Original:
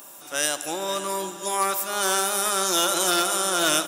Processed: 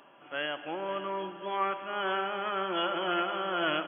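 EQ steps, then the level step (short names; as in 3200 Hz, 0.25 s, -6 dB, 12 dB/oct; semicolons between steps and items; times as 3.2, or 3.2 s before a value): brick-wall FIR low-pass 3400 Hz; -5.5 dB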